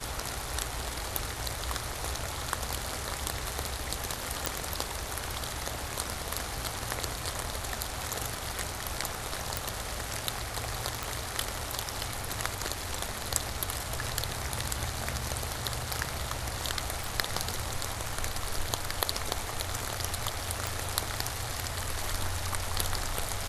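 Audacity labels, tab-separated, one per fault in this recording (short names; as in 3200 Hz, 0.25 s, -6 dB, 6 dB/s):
4.460000	4.460000	pop
9.570000	9.570000	pop
11.030000	11.030000	pop
17.040000	17.040000	pop
20.670000	20.670000	pop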